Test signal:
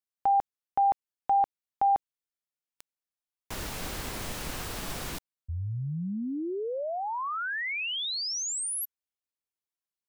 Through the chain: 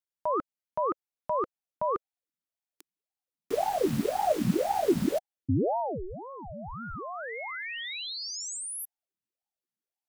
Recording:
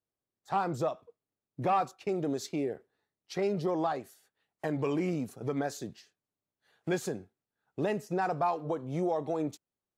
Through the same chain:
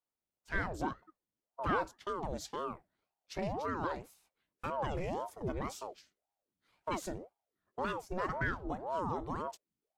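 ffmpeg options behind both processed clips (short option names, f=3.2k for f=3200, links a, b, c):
-af "asubboost=boost=11:cutoff=79,aeval=exprs='val(0)*sin(2*PI*500*n/s+500*0.65/1.9*sin(2*PI*1.9*n/s))':c=same,volume=-1.5dB"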